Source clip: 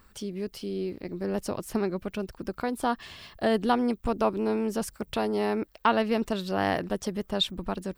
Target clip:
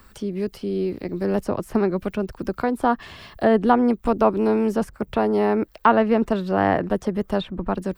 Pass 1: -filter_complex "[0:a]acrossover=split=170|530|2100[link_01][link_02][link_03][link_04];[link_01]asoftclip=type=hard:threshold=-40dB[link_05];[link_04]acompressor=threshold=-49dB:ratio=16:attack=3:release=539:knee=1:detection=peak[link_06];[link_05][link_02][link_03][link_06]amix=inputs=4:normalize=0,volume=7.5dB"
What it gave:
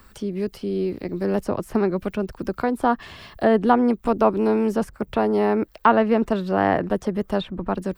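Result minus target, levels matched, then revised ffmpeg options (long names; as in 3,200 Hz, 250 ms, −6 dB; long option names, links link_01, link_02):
hard clipping: distortion +5 dB
-filter_complex "[0:a]acrossover=split=170|530|2100[link_01][link_02][link_03][link_04];[link_01]asoftclip=type=hard:threshold=-33.5dB[link_05];[link_04]acompressor=threshold=-49dB:ratio=16:attack=3:release=539:knee=1:detection=peak[link_06];[link_05][link_02][link_03][link_06]amix=inputs=4:normalize=0,volume=7.5dB"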